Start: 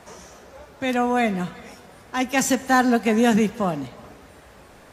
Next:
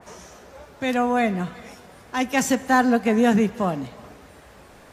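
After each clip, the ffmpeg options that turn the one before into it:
ffmpeg -i in.wav -af "adynamicequalizer=threshold=0.0141:dfrequency=2500:dqfactor=0.7:tfrequency=2500:tqfactor=0.7:attack=5:release=100:ratio=0.375:range=3:mode=cutabove:tftype=highshelf" out.wav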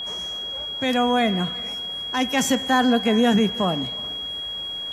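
ffmpeg -i in.wav -filter_complex "[0:a]asplit=2[link_01][link_02];[link_02]alimiter=limit=-15.5dB:level=0:latency=1:release=19,volume=-0.5dB[link_03];[link_01][link_03]amix=inputs=2:normalize=0,aeval=exprs='val(0)+0.0631*sin(2*PI*3300*n/s)':channel_layout=same,volume=-4dB" out.wav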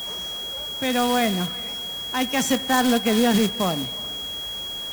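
ffmpeg -i in.wav -af "acrusher=bits=2:mode=log:mix=0:aa=0.000001,volume=-1.5dB" out.wav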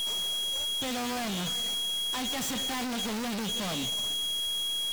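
ffmpeg -i in.wav -af "aeval=exprs='(tanh(39.8*val(0)+0.6)-tanh(0.6))/39.8':channel_layout=same,aeval=exprs='0.0398*sin(PI/2*1.78*val(0)/0.0398)':channel_layout=same" out.wav

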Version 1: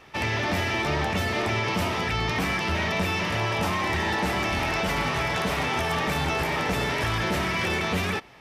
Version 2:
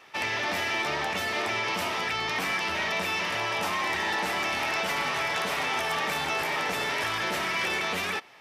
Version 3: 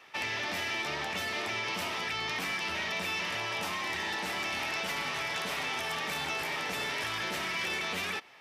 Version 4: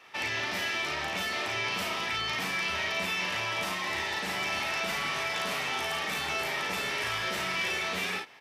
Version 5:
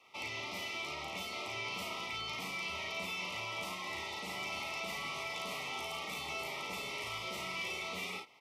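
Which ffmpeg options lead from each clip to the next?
ffmpeg -i in.wav -af "highpass=frequency=680:poles=1" out.wav
ffmpeg -i in.wav -filter_complex "[0:a]equalizer=frequency=2600:width_type=o:width=1.8:gain=2.5,acrossover=split=350|3000[link_01][link_02][link_03];[link_02]acompressor=threshold=-30dB:ratio=6[link_04];[link_01][link_04][link_03]amix=inputs=3:normalize=0,volume=-4dB" out.wav
ffmpeg -i in.wav -af "aecho=1:1:38|53:0.631|0.473" out.wav
ffmpeg -i in.wav -af "asuperstop=centerf=1600:order=20:qfactor=2.8,volume=-8dB" out.wav

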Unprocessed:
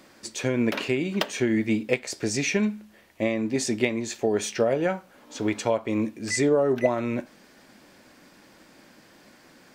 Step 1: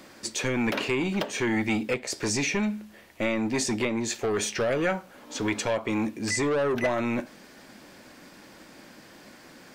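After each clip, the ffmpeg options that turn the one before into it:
ffmpeg -i in.wav -filter_complex "[0:a]acrossover=split=1100[link_01][link_02];[link_01]asoftclip=type=tanh:threshold=-27.5dB[link_03];[link_02]alimiter=limit=-22.5dB:level=0:latency=1:release=260[link_04];[link_03][link_04]amix=inputs=2:normalize=0,volume=4dB" out.wav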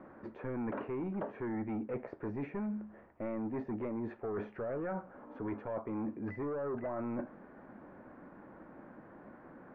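ffmpeg -i in.wav -af "lowpass=frequency=1400:width=0.5412,lowpass=frequency=1400:width=1.3066,areverse,acompressor=threshold=-34dB:ratio=6,areverse,volume=-2dB" out.wav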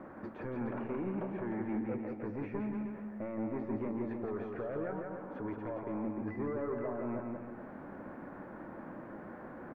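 ffmpeg -i in.wav -filter_complex "[0:a]alimiter=level_in=14dB:limit=-24dB:level=0:latency=1:release=452,volume=-14dB,asplit=2[link_01][link_02];[link_02]aecho=0:1:170|306|414.8|501.8|571.5:0.631|0.398|0.251|0.158|0.1[link_03];[link_01][link_03]amix=inputs=2:normalize=0,volume=4.5dB" out.wav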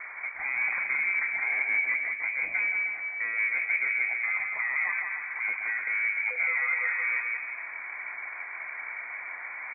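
ffmpeg -i in.wav -af "lowpass=frequency=2100:width_type=q:width=0.5098,lowpass=frequency=2100:width_type=q:width=0.6013,lowpass=frequency=2100:width_type=q:width=0.9,lowpass=frequency=2100:width_type=q:width=2.563,afreqshift=-2500,volume=8.5dB" out.wav

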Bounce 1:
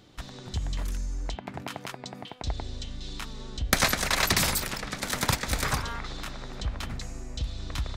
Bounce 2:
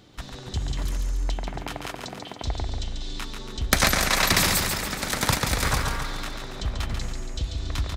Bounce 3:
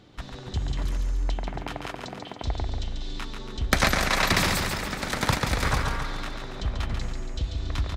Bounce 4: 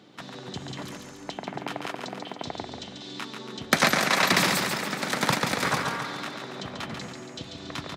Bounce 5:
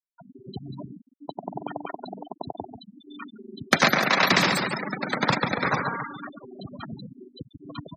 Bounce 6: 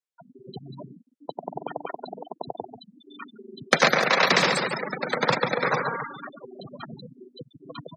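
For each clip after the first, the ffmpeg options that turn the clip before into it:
ffmpeg -i in.wav -af "aecho=1:1:140|280|420|560|700|840|980:0.531|0.281|0.149|0.079|0.0419|0.0222|0.0118,volume=2.5dB" out.wav
ffmpeg -i in.wav -af "highshelf=frequency=6000:gain=-11.5" out.wav
ffmpeg -i in.wav -af "highpass=frequency=150:width=0.5412,highpass=frequency=150:width=1.3066,volume=1.5dB" out.wav
ffmpeg -i in.wav -af "afftfilt=real='re*gte(hypot(re,im),0.0562)':imag='im*gte(hypot(re,im),0.0562)':win_size=1024:overlap=0.75,volume=2dB" out.wav
ffmpeg -i in.wav -af "highpass=frequency=130:width=0.5412,highpass=frequency=130:width=1.3066,equalizer=frequency=200:width_type=q:width=4:gain=-5,equalizer=frequency=290:width_type=q:width=4:gain=-6,equalizer=frequency=490:width_type=q:width=4:gain=8,lowpass=frequency=9600:width=0.5412,lowpass=frequency=9600:width=1.3066" out.wav

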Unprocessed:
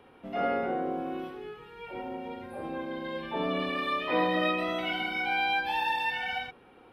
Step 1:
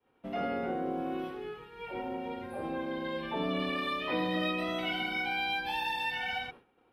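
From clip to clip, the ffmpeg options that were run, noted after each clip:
ffmpeg -i in.wav -filter_complex "[0:a]agate=range=-33dB:threshold=-45dB:ratio=3:detection=peak,acrossover=split=300|3000[link_01][link_02][link_03];[link_02]acompressor=threshold=-34dB:ratio=6[link_04];[link_01][link_04][link_03]amix=inputs=3:normalize=0,volume=1dB" out.wav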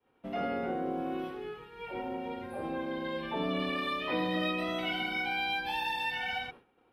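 ffmpeg -i in.wav -af anull out.wav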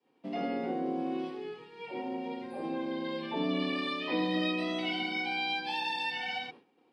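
ffmpeg -i in.wav -af "highpass=frequency=150:width=0.5412,highpass=frequency=150:width=1.3066,equalizer=frequency=290:width_type=q:width=4:gain=5,equalizer=frequency=610:width_type=q:width=4:gain=-3,equalizer=frequency=1400:width_type=q:width=4:gain=-10,equalizer=frequency=4700:width_type=q:width=4:gain=9,lowpass=frequency=8900:width=0.5412,lowpass=frequency=8900:width=1.3066" out.wav

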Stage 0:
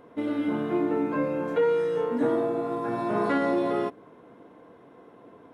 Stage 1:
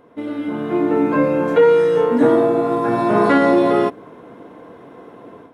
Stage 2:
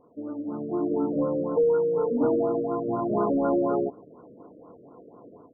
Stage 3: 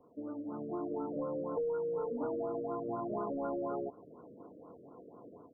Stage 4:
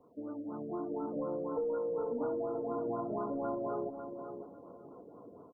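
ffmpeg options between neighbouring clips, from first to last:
ffmpeg -i in.wav -af "dynaudnorm=framelen=540:gausssize=3:maxgain=10dB,volume=1.5dB" out.wav
ffmpeg -i in.wav -af "asoftclip=type=tanh:threshold=-4.5dB,afftfilt=real='re*lt(b*sr/1024,610*pow(1500/610,0.5+0.5*sin(2*PI*4.1*pts/sr)))':imag='im*lt(b*sr/1024,610*pow(1500/610,0.5+0.5*sin(2*PI*4.1*pts/sr)))':win_size=1024:overlap=0.75,volume=-8.5dB" out.wav
ffmpeg -i in.wav -filter_complex "[0:a]acrossover=split=96|560[link_01][link_02][link_03];[link_01]acompressor=threshold=-57dB:ratio=4[link_04];[link_02]acompressor=threshold=-36dB:ratio=4[link_05];[link_03]acompressor=threshold=-34dB:ratio=4[link_06];[link_04][link_05][link_06]amix=inputs=3:normalize=0,volume=-4.5dB" out.wav
ffmpeg -i in.wav -af "aecho=1:1:548|1096|1644:0.398|0.0916|0.0211" out.wav

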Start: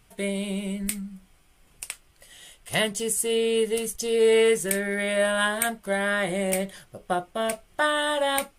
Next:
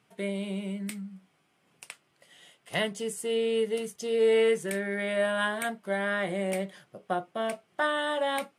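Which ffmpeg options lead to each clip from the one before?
ffmpeg -i in.wav -af "highpass=frequency=140:width=0.5412,highpass=frequency=140:width=1.3066,aemphasis=mode=reproduction:type=50kf,volume=-3.5dB" out.wav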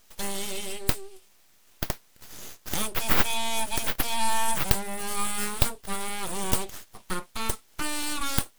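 ffmpeg -i in.wav -filter_complex "[0:a]acrossover=split=370|1100|6500[link_01][link_02][link_03][link_04];[link_03]acompressor=threshold=-44dB:ratio=6[link_05];[link_01][link_02][link_05][link_04]amix=inputs=4:normalize=0,aexciter=amount=5.8:drive=6.8:freq=2700,aeval=exprs='abs(val(0))':channel_layout=same,volume=1.5dB" out.wav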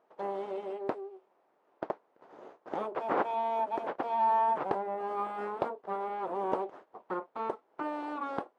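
ffmpeg -i in.wav -af "asuperpass=centerf=590:order=4:qfactor=0.91,volume=4dB" out.wav

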